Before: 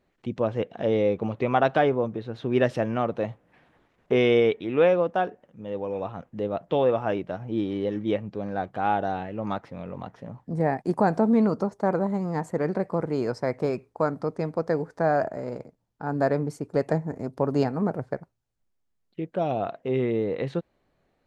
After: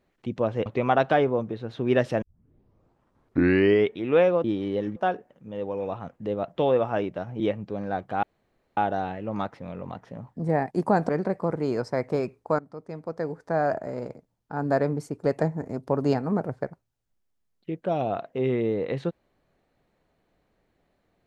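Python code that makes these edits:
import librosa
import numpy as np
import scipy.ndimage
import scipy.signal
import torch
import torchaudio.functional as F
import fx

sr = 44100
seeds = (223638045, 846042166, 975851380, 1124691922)

y = fx.edit(x, sr, fx.cut(start_s=0.66, length_s=0.65),
    fx.tape_start(start_s=2.87, length_s=1.72),
    fx.move(start_s=7.53, length_s=0.52, to_s=5.09),
    fx.insert_room_tone(at_s=8.88, length_s=0.54),
    fx.cut(start_s=11.2, length_s=1.39),
    fx.fade_in_from(start_s=14.09, length_s=1.29, floor_db=-16.5), tone=tone)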